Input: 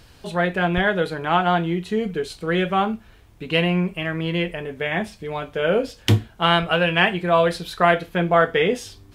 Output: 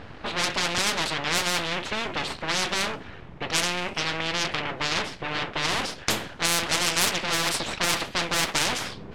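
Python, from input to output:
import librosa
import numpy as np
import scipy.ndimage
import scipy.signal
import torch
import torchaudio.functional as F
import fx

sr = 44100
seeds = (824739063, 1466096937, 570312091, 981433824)

y = np.abs(x)
y = fx.env_lowpass(y, sr, base_hz=2000.0, full_db=-13.5)
y = fx.spectral_comp(y, sr, ratio=4.0)
y = y * librosa.db_to_amplitude(-2.5)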